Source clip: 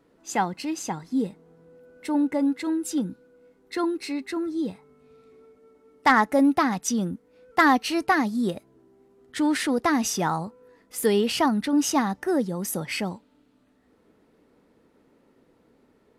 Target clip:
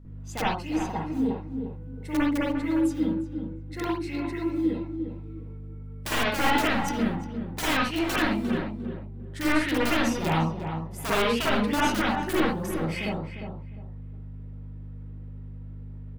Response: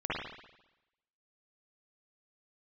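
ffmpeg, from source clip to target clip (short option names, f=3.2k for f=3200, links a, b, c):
-filter_complex "[0:a]aeval=exprs='(mod(6.31*val(0)+1,2)-1)/6.31':c=same,acrusher=bits=7:mode=log:mix=0:aa=0.000001,asplit=2[a][b];[b]adelay=352,lowpass=f=1.6k:p=1,volume=-7dB,asplit=2[c][d];[d]adelay=352,lowpass=f=1.6k:p=1,volume=0.24,asplit=2[e][f];[f]adelay=352,lowpass=f=1.6k:p=1,volume=0.24[g];[a][c][e][g]amix=inputs=4:normalize=0,aeval=exprs='val(0)+0.0158*(sin(2*PI*50*n/s)+sin(2*PI*2*50*n/s)/2+sin(2*PI*3*50*n/s)/3+sin(2*PI*4*50*n/s)/4+sin(2*PI*5*50*n/s)/5)':c=same[h];[1:a]atrim=start_sample=2205,atrim=end_sample=6174[i];[h][i]afir=irnorm=-1:irlink=0,volume=-7.5dB"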